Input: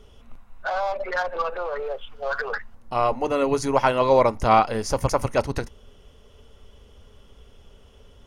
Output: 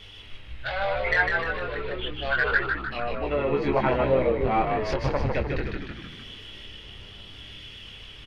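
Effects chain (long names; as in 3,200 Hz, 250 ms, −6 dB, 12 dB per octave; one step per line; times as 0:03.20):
treble cut that deepens with the level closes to 1,200 Hz, closed at −19 dBFS
flat-topped bell 2,800 Hz +15 dB
in parallel at −5.5 dB: soft clipping −9.5 dBFS, distortion −19 dB
on the sum: rotating-speaker cabinet horn 0.75 Hz
hum with harmonics 100 Hz, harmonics 33, −51 dBFS −6 dB per octave
multi-voice chorus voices 4, 0.55 Hz, delay 22 ms, depth 1.6 ms
on a send: echo with shifted repeats 152 ms, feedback 53%, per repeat −67 Hz, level −4 dB
on the sum: one half of a high-frequency compander encoder only
level −3.5 dB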